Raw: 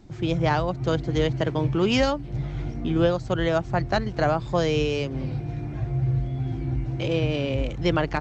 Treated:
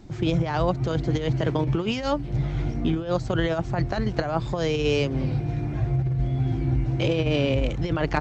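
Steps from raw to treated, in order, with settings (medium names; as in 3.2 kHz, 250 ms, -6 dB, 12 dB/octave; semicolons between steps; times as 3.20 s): compressor with a negative ratio -24 dBFS, ratio -0.5; trim +2 dB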